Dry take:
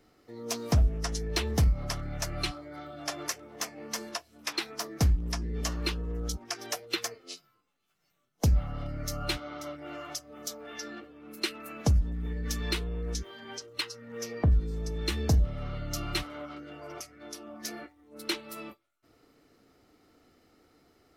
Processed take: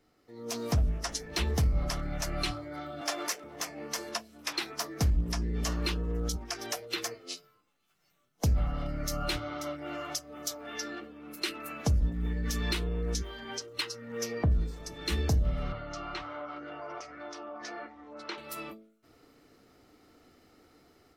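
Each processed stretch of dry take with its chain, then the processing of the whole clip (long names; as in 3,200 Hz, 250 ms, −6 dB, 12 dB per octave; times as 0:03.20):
0:03.01–0:03.44: Chebyshev high-pass filter 190 Hz, order 4 + low-shelf EQ 370 Hz −7.5 dB + leveller curve on the samples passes 1
0:15.72–0:18.38: low-pass filter 6,500 Hz 24 dB per octave + parametric band 960 Hz +14.5 dB 2.7 octaves + downward compressor 2.5 to 1, threshold −46 dBFS
whole clip: hum removal 54.87 Hz, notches 12; brickwall limiter −22.5 dBFS; automatic gain control gain up to 8.5 dB; level −5.5 dB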